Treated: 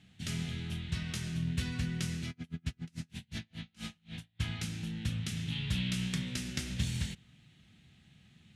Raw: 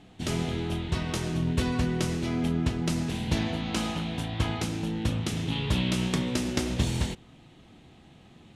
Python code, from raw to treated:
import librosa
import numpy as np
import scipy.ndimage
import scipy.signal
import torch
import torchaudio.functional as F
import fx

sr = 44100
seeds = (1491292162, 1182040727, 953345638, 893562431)

y = scipy.signal.sosfilt(scipy.signal.butter(2, 62.0, 'highpass', fs=sr, output='sos'), x)
y = fx.band_shelf(y, sr, hz=560.0, db=-14.0, octaves=2.4)
y = fx.tremolo_db(y, sr, hz=fx.line((2.29, 8.7), (4.39, 2.7)), depth_db=38, at=(2.29, 4.39), fade=0.02)
y = F.gain(torch.from_numpy(y), -5.0).numpy()